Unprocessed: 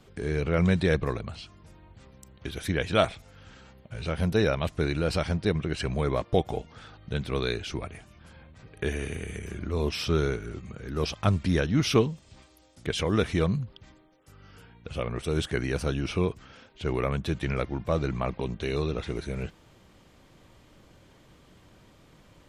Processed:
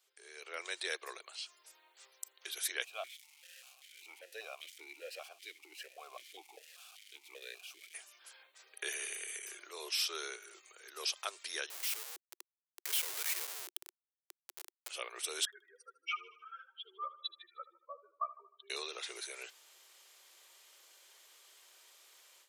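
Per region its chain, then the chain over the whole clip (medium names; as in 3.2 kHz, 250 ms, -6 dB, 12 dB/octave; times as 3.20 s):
2.84–7.94 s: zero-crossing glitches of -24 dBFS + stepped vowel filter 5.1 Hz
11.70–14.89 s: peaking EQ 2.1 kHz +9 dB 1.1 oct + compression 2:1, threshold -35 dBFS + Schmitt trigger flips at -41 dBFS
15.45–18.70 s: spectral contrast enhancement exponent 3.8 + resonant high-pass 1.2 kHz, resonance Q 8.5 + feedback delay 77 ms, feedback 53%, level -16.5 dB
whole clip: level rider gain up to 14 dB; elliptic high-pass 360 Hz, stop band 40 dB; differentiator; trim -5 dB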